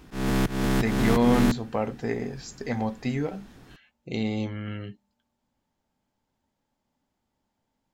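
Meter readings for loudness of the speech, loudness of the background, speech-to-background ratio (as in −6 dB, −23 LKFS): −28.5 LKFS, −26.5 LKFS, −2.0 dB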